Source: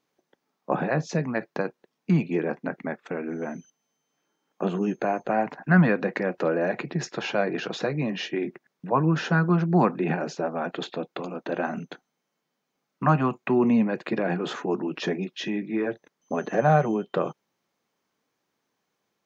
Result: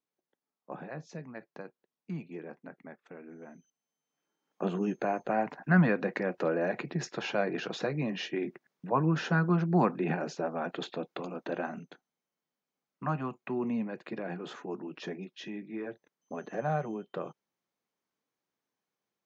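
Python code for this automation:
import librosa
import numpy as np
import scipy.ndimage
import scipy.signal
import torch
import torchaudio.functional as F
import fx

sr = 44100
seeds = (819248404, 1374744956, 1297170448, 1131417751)

y = fx.gain(x, sr, db=fx.line((3.57, -16.5), (4.66, -5.0), (11.49, -5.0), (11.91, -11.5)))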